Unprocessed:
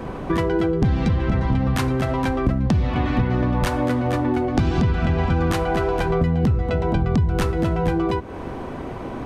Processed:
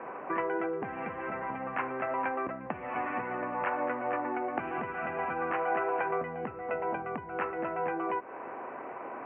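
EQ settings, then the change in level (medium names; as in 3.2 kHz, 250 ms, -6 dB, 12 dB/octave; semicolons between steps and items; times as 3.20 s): high-pass 680 Hz 12 dB/octave; steep low-pass 2.7 kHz 72 dB/octave; distance through air 440 m; -1.0 dB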